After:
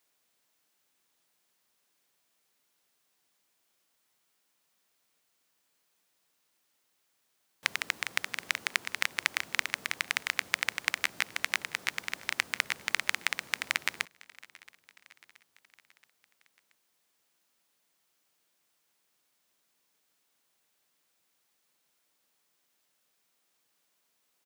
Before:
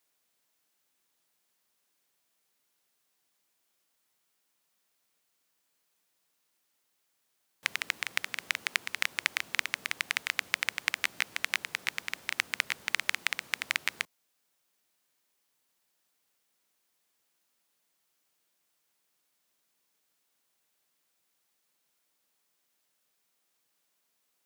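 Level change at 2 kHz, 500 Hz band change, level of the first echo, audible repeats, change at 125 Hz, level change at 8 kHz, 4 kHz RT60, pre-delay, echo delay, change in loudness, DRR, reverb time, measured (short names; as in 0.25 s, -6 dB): +0.5 dB, +2.5 dB, -23.0 dB, 3, n/a, +1.0 dB, none, none, 0.676 s, +0.5 dB, none, none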